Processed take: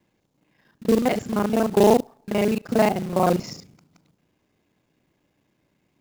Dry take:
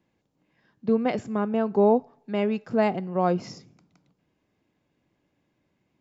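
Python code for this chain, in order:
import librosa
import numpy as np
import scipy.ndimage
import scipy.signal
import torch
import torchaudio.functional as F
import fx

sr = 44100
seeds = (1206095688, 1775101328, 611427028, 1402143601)

y = fx.local_reverse(x, sr, ms=34.0)
y = fx.high_shelf(y, sr, hz=5400.0, db=5.0)
y = fx.quant_float(y, sr, bits=2)
y = y * librosa.db_to_amplitude(4.0)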